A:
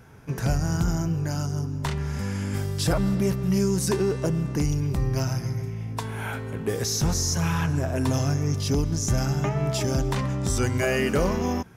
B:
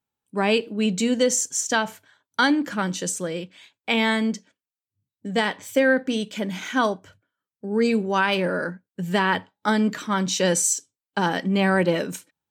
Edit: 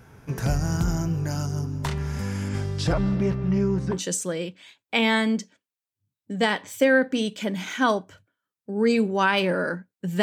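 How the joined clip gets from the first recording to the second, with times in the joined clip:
A
2.48–3.99 s: low-pass 7.6 kHz -> 1.5 kHz
3.94 s: go over to B from 2.89 s, crossfade 0.10 s

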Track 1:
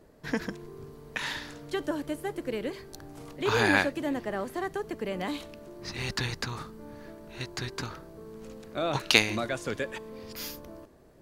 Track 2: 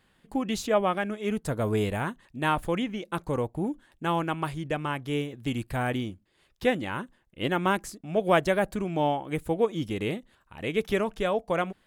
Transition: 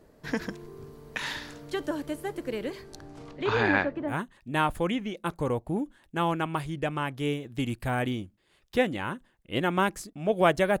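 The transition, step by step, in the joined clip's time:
track 1
2.83–4.15 s: low-pass 11 kHz -> 1.2 kHz
4.11 s: go over to track 2 from 1.99 s, crossfade 0.08 s

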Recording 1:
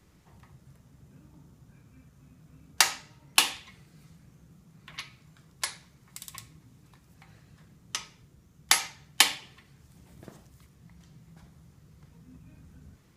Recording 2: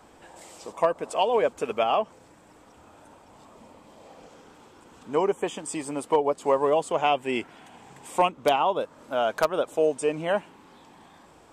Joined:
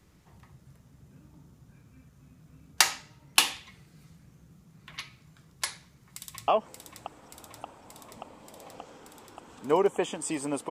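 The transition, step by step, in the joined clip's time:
recording 1
5.88–6.48 s: echo throw 580 ms, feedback 80%, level -5.5 dB
6.48 s: go over to recording 2 from 1.92 s

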